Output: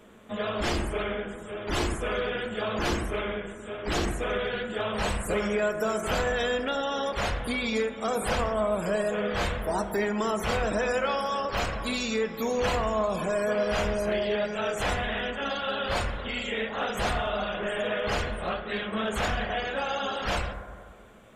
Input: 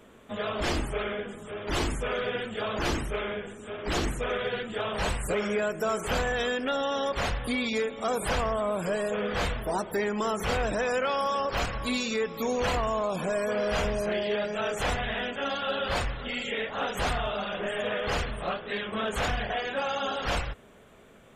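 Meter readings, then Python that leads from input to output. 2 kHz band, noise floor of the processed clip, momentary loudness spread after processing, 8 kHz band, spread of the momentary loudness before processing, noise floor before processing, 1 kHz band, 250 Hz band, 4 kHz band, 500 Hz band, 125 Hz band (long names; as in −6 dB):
+1.0 dB, −42 dBFS, 5 LU, 0.0 dB, 5 LU, −53 dBFS, +0.5 dB, +1.5 dB, 0.0 dB, +1.0 dB, +0.5 dB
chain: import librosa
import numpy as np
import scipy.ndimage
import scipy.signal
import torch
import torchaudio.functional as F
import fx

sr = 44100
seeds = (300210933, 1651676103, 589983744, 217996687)

y = fx.rev_fdn(x, sr, rt60_s=1.9, lf_ratio=0.8, hf_ratio=0.25, size_ms=28.0, drr_db=7.5)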